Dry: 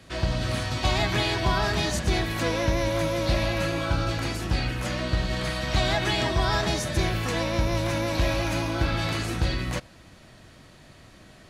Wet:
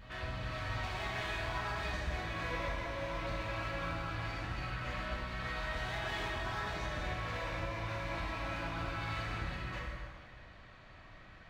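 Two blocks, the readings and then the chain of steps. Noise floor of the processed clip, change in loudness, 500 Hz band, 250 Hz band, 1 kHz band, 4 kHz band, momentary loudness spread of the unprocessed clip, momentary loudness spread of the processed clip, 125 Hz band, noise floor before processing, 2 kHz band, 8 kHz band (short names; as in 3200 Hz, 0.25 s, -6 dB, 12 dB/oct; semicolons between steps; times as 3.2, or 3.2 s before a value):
-55 dBFS, -12.5 dB, -14.0 dB, -16.5 dB, -9.5 dB, -15.0 dB, 4 LU, 11 LU, -14.0 dB, -51 dBFS, -8.5 dB, -19.5 dB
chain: LPF 2200 Hz 12 dB/oct; bell 250 Hz -14 dB 2.9 oct; compressor 2:1, threshold -40 dBFS, peak gain reduction 9 dB; hard clip -36 dBFS, distortion -12 dB; on a send: reverse echo 0.3 s -10.5 dB; on the sum: plate-style reverb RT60 1.9 s, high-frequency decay 0.8×, DRR -4.5 dB; gain -3.5 dB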